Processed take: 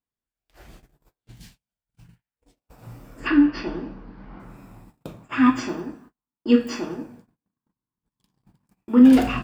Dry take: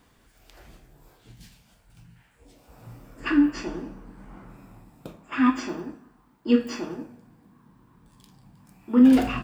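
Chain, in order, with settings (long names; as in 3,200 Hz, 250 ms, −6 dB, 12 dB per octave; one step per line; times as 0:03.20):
0:03.27–0:04.40: Butterworth low-pass 5,100 Hz 48 dB per octave
0:05.07–0:05.72: parametric band 120 Hz +14 dB 0.34 octaves
noise gate −50 dBFS, range −38 dB
level +3 dB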